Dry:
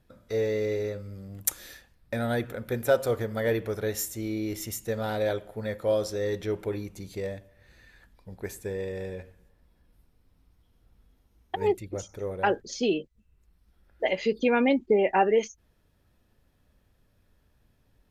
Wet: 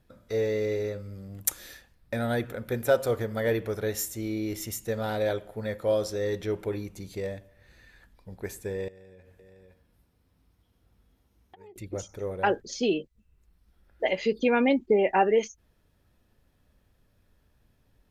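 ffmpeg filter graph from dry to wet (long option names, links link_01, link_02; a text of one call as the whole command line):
ffmpeg -i in.wav -filter_complex "[0:a]asettb=1/sr,asplit=3[link_01][link_02][link_03];[link_01]atrim=end=8.884[link_04];[link_02]atrim=start=8.88:end=11.76,asetpts=PTS-STARTPTS,afade=type=in:duration=0.004:curve=qsin,afade=type=out:start_time=2.876:duration=0.004:curve=qsin,highpass=55,aecho=1:1:512:0.15,atrim=end_sample=127008,acompressor=threshold=-50dB:ratio=6:attack=3.2:release=140:knee=1:detection=peak[link_05];[link_03]atrim=start=11.756[link_06];[link_04][link_05]acrossfade=duration=0.004:curve1=hsin:curve2=qsin[link_07];[link_07][link_06]acrossfade=duration=0.004:curve1=qsin:curve2=hsin" out.wav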